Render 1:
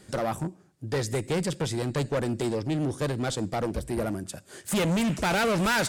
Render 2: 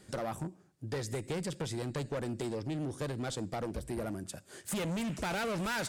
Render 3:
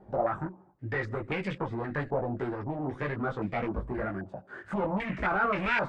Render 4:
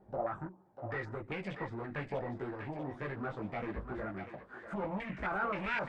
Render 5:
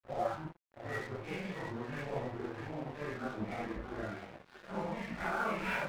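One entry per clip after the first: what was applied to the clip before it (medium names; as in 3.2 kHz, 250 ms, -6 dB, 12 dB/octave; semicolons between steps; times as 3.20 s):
compression, threshold -28 dBFS, peak gain reduction 5 dB; trim -5 dB
chorus voices 6, 1.2 Hz, delay 18 ms, depth 3 ms; step-sequenced low-pass 3.8 Hz 800–2300 Hz; trim +6 dB
thinning echo 643 ms, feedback 47%, high-pass 670 Hz, level -6 dB; trim -7.5 dB
phase randomisation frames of 200 ms; crossover distortion -49.5 dBFS; trim +1.5 dB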